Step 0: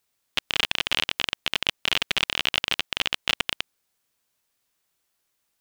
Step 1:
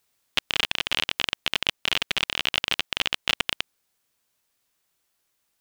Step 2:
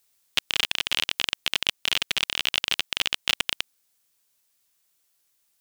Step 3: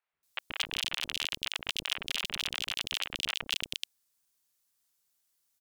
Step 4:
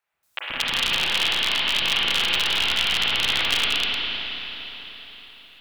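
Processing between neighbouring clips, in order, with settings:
speech leveller within 4 dB 0.5 s
high-shelf EQ 3,300 Hz +9.5 dB; level −4 dB
tape wow and flutter 28 cents; three-band delay without the direct sound mids, lows, highs 130/230 ms, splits 490/2,500 Hz; level −6 dB
delay that plays each chunk backwards 108 ms, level −5 dB; convolution reverb RT60 4.2 s, pre-delay 32 ms, DRR −6.5 dB; level +6 dB

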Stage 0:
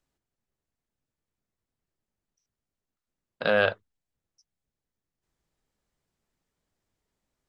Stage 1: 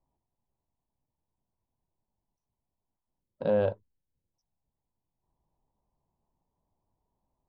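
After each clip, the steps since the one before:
gain on a spectral selection 0:03.21–0:04.34, 590–1,300 Hz −11 dB
drawn EQ curve 110 Hz 0 dB, 480 Hz −5 dB, 980 Hz +5 dB, 1,400 Hz −23 dB
level +3.5 dB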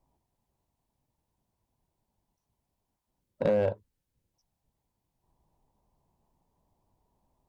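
downward compressor 8 to 1, threshold −28 dBFS, peak gain reduction 8 dB
asymmetric clip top −25.5 dBFS
level +7 dB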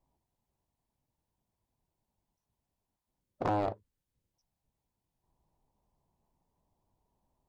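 highs frequency-modulated by the lows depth 0.94 ms
level −4.5 dB

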